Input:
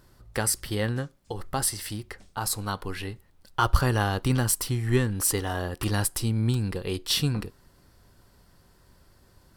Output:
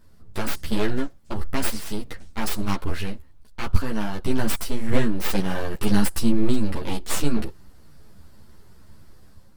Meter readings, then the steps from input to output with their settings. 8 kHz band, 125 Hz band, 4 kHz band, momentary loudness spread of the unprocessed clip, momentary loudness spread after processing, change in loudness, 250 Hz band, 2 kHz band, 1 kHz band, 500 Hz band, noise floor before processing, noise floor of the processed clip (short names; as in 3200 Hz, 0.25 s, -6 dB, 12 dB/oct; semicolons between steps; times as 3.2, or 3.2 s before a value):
-6.0 dB, -3.0 dB, -2.5 dB, 12 LU, 12 LU, 0.0 dB, +6.0 dB, 0.0 dB, -2.0 dB, +2.0 dB, -60 dBFS, -47 dBFS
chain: low shelf 170 Hz +9.5 dB; AGC gain up to 6 dB; full-wave rectifier; ensemble effect